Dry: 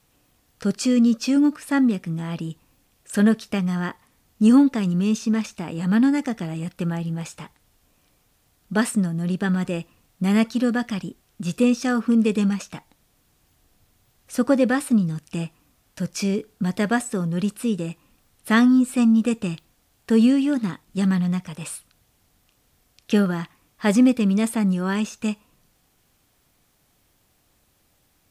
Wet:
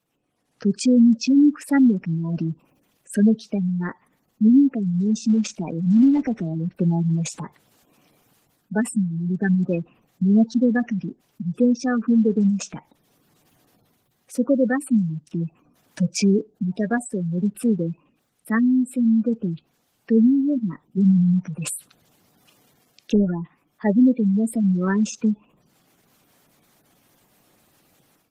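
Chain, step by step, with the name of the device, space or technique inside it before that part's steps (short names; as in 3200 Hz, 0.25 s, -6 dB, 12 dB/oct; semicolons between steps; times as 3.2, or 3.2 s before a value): noise-suppressed video call (HPF 130 Hz 24 dB/oct; spectral gate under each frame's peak -15 dB strong; AGC gain up to 16 dB; gain -7.5 dB; Opus 16 kbps 48000 Hz)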